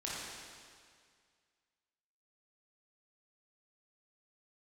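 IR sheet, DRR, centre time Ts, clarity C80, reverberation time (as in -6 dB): -7.5 dB, 137 ms, -1.0 dB, 2.0 s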